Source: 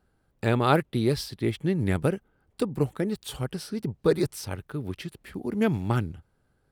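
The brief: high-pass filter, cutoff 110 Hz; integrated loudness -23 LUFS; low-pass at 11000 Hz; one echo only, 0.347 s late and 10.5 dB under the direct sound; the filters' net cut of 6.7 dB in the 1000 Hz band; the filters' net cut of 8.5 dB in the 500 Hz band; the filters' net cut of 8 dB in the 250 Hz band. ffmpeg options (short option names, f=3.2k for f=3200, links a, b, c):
-af "highpass=110,lowpass=11k,equalizer=f=250:t=o:g=-9,equalizer=f=500:t=o:g=-6,equalizer=f=1k:t=o:g=-7,aecho=1:1:347:0.299,volume=11dB"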